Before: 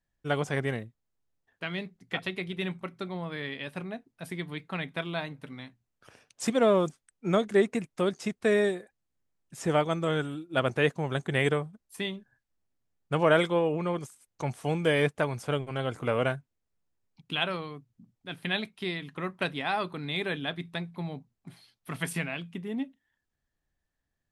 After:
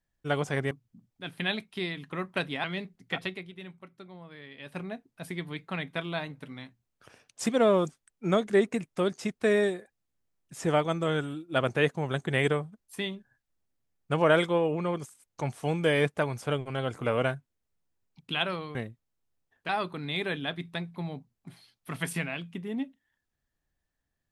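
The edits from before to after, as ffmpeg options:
-filter_complex "[0:a]asplit=7[a][b][c][d][e][f][g];[a]atrim=end=0.712[h];[b]atrim=start=17.758:end=19.692[i];[c]atrim=start=1.648:end=2.59,asetpts=PTS-STARTPTS,afade=t=out:st=0.622:d=0.32:c=qua:silence=0.266073[j];[d]atrim=start=2.59:end=3.47,asetpts=PTS-STARTPTS,volume=-11.5dB[k];[e]atrim=start=3.47:end=17.762,asetpts=PTS-STARTPTS,afade=t=in:d=0.32:c=qua:silence=0.266073[l];[f]atrim=start=0.708:end=1.652[m];[g]atrim=start=19.688[n];[h][i]acrossfade=d=0.004:c1=hsin:c2=hsin[o];[j][k][l]concat=n=3:v=0:a=1[p];[o][p]acrossfade=d=0.004:c1=hsin:c2=hsin[q];[q][m]acrossfade=d=0.004:c1=hsin:c2=hsin[r];[r][n]acrossfade=d=0.004:c1=hsin:c2=hsin"

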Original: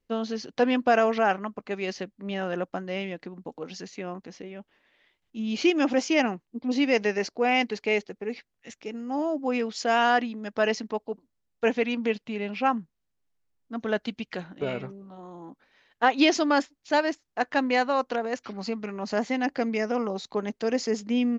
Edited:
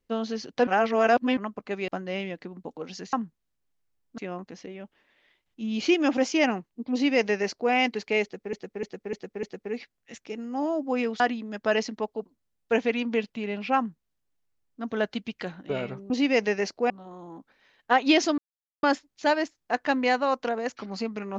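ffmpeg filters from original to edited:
-filter_complex "[0:a]asplit=14[a][b][c][d][e][f][g][h][i][j][k][l][m][n];[a]atrim=end=0.672[o];[b]atrim=start=0.668:end=1.372,asetpts=PTS-STARTPTS,areverse[p];[c]atrim=start=1.368:end=1.882[q];[d]atrim=start=2.688:end=3.942[r];[e]atrim=start=12.688:end=13.742[s];[f]atrim=start=3.938:end=8.292[t];[g]atrim=start=7.988:end=8.292[u];[h]atrim=start=7.988:end=8.292[v];[i]atrim=start=7.988:end=8.292[w];[j]atrim=start=7.988:end=9.762[x];[k]atrim=start=10.118:end=15.022[y];[l]atrim=start=6.678:end=7.482[z];[m]atrim=start=15.018:end=16.5,asetpts=PTS-STARTPTS,afade=t=out:st=1.478:d=0.004:c=hsin,apad=pad_dur=0.45[aa];[n]atrim=start=16.5,asetpts=PTS-STARTPTS,afade=t=in:d=0.004:c=hsin[ab];[o][p]acrossfade=d=0.004:c1=hsin:c2=hsin[ac];[ac][q]acrossfade=d=0.004:c1=hsin:c2=hsin[ad];[ad][r]acrossfade=d=0.004:c1=hsin:c2=hsin[ae];[ae][s]acrossfade=d=0.004:c1=hsin:c2=hsin[af];[af][t]acrossfade=d=0.004:c1=hsin:c2=hsin[ag];[ag][u]acrossfade=d=0.004:c1=hsin:c2=hsin[ah];[ah][v]acrossfade=d=0.004:c1=hsin:c2=hsin[ai];[ai][w]acrossfade=d=0.004:c1=hsin:c2=hsin[aj];[aj][x]acrossfade=d=0.004:c1=hsin:c2=hsin[ak];[ak][y]acrossfade=d=0.004:c1=hsin:c2=hsin[al];[al][z]acrossfade=d=0.004:c1=hsin:c2=hsin[am];[aa][ab]concat=n=2:v=0:a=1[an];[am][an]acrossfade=d=0.004:c1=hsin:c2=hsin"

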